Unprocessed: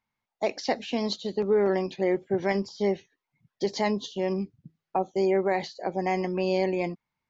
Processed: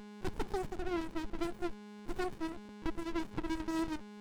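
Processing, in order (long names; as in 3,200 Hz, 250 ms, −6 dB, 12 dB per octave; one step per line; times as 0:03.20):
hum with harmonics 120 Hz, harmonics 19, −47 dBFS −1 dB per octave
echo ahead of the sound 61 ms −17 dB
wrong playback speed 45 rpm record played at 78 rpm
windowed peak hold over 65 samples
level −8 dB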